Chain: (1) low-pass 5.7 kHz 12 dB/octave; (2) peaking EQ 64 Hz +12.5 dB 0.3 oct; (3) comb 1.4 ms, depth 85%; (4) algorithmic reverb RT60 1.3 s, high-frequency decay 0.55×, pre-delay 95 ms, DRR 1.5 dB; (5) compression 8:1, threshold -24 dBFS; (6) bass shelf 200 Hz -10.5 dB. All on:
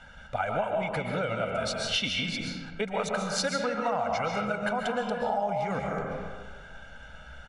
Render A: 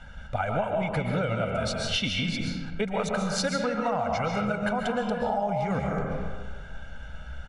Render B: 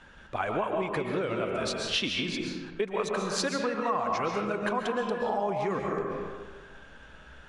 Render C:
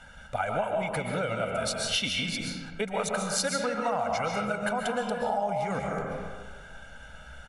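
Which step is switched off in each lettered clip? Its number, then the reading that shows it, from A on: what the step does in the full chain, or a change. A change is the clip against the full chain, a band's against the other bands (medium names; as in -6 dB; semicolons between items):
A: 6, 125 Hz band +6.5 dB; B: 3, 250 Hz band +2.5 dB; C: 1, 8 kHz band +5.0 dB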